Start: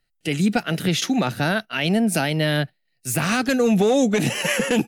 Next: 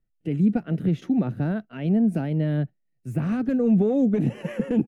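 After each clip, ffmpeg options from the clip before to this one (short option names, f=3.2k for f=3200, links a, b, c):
-af "firequalizer=gain_entry='entry(230,0);entry(790,-13);entry(4500,-30)':delay=0.05:min_phase=1"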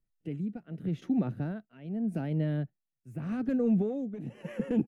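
-af "tremolo=f=0.84:d=0.75,volume=-5.5dB"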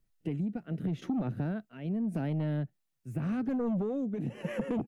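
-filter_complex "[0:a]asplit=2[a][b];[b]aeval=exprs='0.133*sin(PI/2*2.24*val(0)/0.133)':c=same,volume=-4dB[c];[a][c]amix=inputs=2:normalize=0,acompressor=threshold=-26dB:ratio=6,volume=-3.5dB"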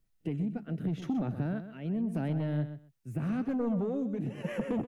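-af "aecho=1:1:127|254:0.282|0.0479"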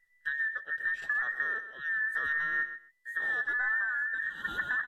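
-af "afftfilt=real='real(if(between(b,1,1012),(2*floor((b-1)/92)+1)*92-b,b),0)':imag='imag(if(between(b,1,1012),(2*floor((b-1)/92)+1)*92-b,b),0)*if(between(b,1,1012),-1,1)':win_size=2048:overlap=0.75,aresample=32000,aresample=44100"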